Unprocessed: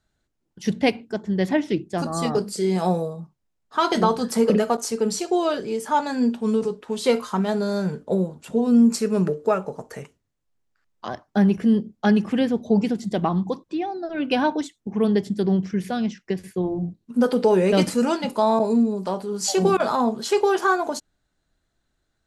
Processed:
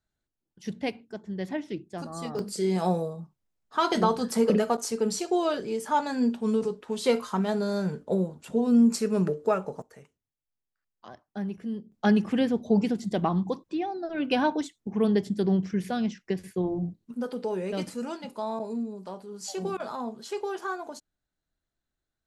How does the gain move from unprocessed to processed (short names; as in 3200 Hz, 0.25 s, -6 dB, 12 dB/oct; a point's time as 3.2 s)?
-11 dB
from 2.39 s -4 dB
from 9.82 s -15 dB
from 11.92 s -3.5 dB
from 17.14 s -13 dB